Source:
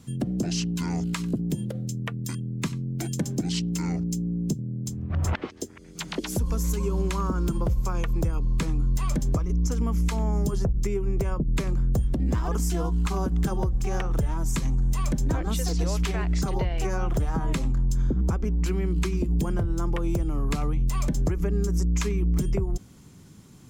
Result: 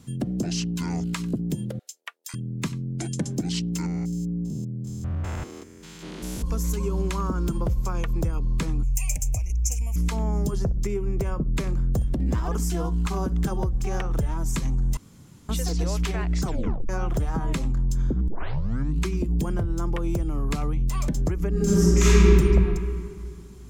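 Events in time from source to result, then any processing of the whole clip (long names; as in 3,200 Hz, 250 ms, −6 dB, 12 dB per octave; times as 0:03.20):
0:01.79–0:02.34: Bessel high-pass filter 1,200 Hz, order 6
0:02.88–0:03.33: bad sample-rate conversion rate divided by 2×, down none, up filtered
0:03.86–0:06.44: spectrum averaged block by block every 200 ms
0:08.83–0:09.96: drawn EQ curve 110 Hz 0 dB, 170 Hz −17 dB, 390 Hz −21 dB, 750 Hz −3 dB, 1,400 Hz −28 dB, 2,500 Hz +11 dB, 3,600 Hz −16 dB, 6,400 Hz +11 dB
0:10.59–0:13.44: repeating echo 63 ms, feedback 22%, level −20 dB
0:14.97–0:15.49: fill with room tone
0:16.44: tape stop 0.45 s
0:18.28: tape start 0.74 s
0:21.52–0:22.26: thrown reverb, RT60 2.4 s, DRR −11.5 dB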